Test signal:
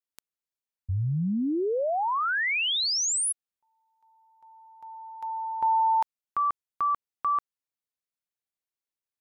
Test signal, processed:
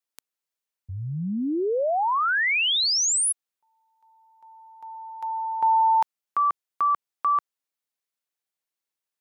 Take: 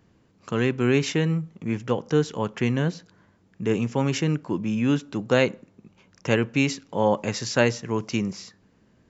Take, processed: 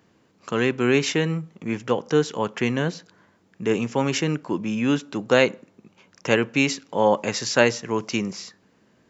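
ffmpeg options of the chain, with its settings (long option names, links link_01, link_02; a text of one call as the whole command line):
ffmpeg -i in.wav -af "highpass=frequency=290:poles=1,volume=4dB" out.wav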